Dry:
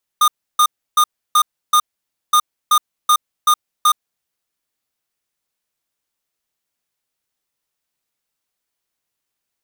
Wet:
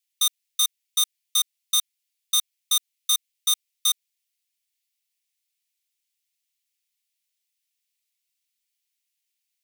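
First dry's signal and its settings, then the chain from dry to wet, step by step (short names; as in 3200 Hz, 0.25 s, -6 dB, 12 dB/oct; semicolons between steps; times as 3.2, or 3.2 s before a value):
beep pattern square 1220 Hz, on 0.07 s, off 0.31 s, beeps 5, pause 0.53 s, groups 2, -11.5 dBFS
steep high-pass 2100 Hz 36 dB/oct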